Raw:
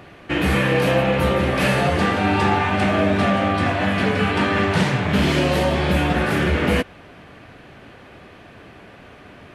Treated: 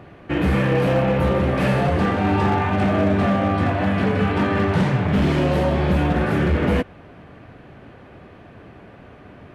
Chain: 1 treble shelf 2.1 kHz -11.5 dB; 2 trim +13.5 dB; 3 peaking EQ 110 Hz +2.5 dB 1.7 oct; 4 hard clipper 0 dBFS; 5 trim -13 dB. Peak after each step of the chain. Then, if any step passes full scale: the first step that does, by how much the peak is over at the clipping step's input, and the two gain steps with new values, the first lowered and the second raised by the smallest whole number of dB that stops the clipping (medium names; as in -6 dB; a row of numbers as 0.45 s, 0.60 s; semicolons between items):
-7.5 dBFS, +6.0 dBFS, +7.0 dBFS, 0.0 dBFS, -13.0 dBFS; step 2, 7.0 dB; step 2 +6.5 dB, step 5 -6 dB